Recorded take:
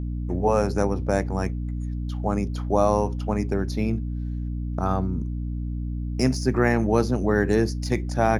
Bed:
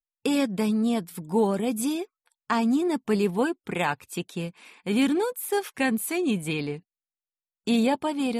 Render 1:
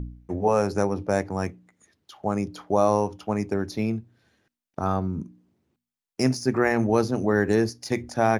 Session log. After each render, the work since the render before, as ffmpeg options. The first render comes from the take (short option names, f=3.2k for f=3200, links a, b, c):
-af "bandreject=f=60:t=h:w=4,bandreject=f=120:t=h:w=4,bandreject=f=180:t=h:w=4,bandreject=f=240:t=h:w=4,bandreject=f=300:t=h:w=4"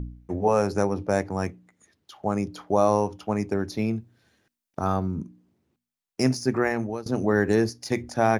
-filter_complex "[0:a]asettb=1/sr,asplit=3[a][b][c];[a]atrim=end=3.964[d];[b]atrim=start=3.96:end=5.14,asetpts=PTS-STARTPTS,afade=t=in:d=0.004:c=qsin,afade=t=out:st=1.176:d=0.004:c=qsin,highshelf=f=5.2k:g=5[e];[c]atrim=start=5.136[f];[d][e]acrossfade=d=0.004:c1=hsin:c2=qsin[g];[g][f]acrossfade=d=0.004:c1=qsin:c2=hsin,asplit=2[h][i];[h]atrim=end=7.06,asetpts=PTS-STARTPTS,afade=t=out:st=6.31:d=0.75:c=qsin:silence=0.0749894[j];[i]atrim=start=7.06,asetpts=PTS-STARTPTS,afade=t=in:d=0.004:c=hsin:silence=0.0749894[k];[j][k]concat=n=2:v=0:a=1"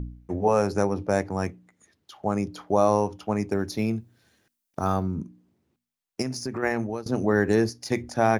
-filter_complex "[0:a]asettb=1/sr,asplit=3[a][b][c];[a]atrim=end=3.514[d];[b]atrim=start=3.51:end=5.03,asetpts=PTS-STARTPTS,afade=t=in:d=0.004:c=qsin,afade=t=out:st=1.516:d=0.004:c=qsin,highshelf=f=6.4k:g=7[e];[c]atrim=start=5.026[f];[d][e]acrossfade=d=0.004:c1=hsin:c2=qsin[g];[g][f]acrossfade=d=0.004:c1=qsin:c2=hsin,asplit=3[h][i][j];[h]afade=t=out:st=6.21:d=0.02[k];[i]acompressor=threshold=-26dB:ratio=6:attack=3.2:release=140:knee=1:detection=peak,afade=t=in:st=6.21:d=0.02,afade=t=out:st=6.62:d=0.02[l];[j]afade=t=in:st=6.62:d=0.02[m];[k][l][m]amix=inputs=3:normalize=0"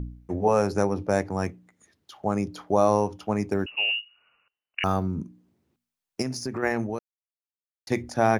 -filter_complex "[0:a]asettb=1/sr,asplit=3[a][b][c];[a]atrim=end=3.664[d];[b]atrim=start=3.66:end=4.84,asetpts=PTS-STARTPTS,afade=t=in:d=0.004:c=qsin,afade=t=out:st=1.176:d=0.004:c=qsin,lowpass=f=2.6k:t=q:w=0.5098,lowpass=f=2.6k:t=q:w=0.6013,lowpass=f=2.6k:t=q:w=0.9,lowpass=f=2.6k:t=q:w=2.563,afreqshift=-3000[e];[c]atrim=start=4.836[f];[d][e]acrossfade=d=0.004:c1=hsin:c2=qsin[g];[g][f]acrossfade=d=0.004:c1=qsin:c2=hsin,asplit=3[h][i][j];[h]atrim=end=6.99,asetpts=PTS-STARTPTS,afade=t=out:st=6.986:d=0.004:c=hsin[k];[i]atrim=start=6.99:end=7.87,asetpts=PTS-STARTPTS,volume=0[l];[j]atrim=start=7.87,asetpts=PTS-STARTPTS,afade=t=in:d=0.004:c=hsin[m];[k][l][m]concat=n=3:v=0:a=1"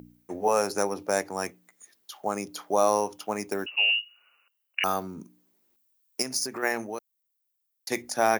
-af "highpass=f=260:p=1,aemphasis=mode=production:type=bsi"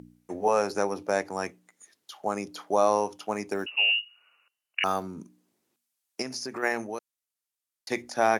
-filter_complex "[0:a]lowpass=11k,acrossover=split=5000[a][b];[b]acompressor=threshold=-44dB:ratio=4:attack=1:release=60[c];[a][c]amix=inputs=2:normalize=0"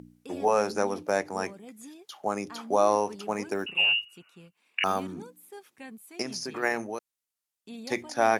-filter_complex "[1:a]volume=-20dB[a];[0:a][a]amix=inputs=2:normalize=0"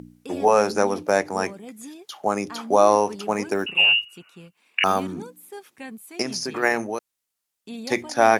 -af "volume=6.5dB"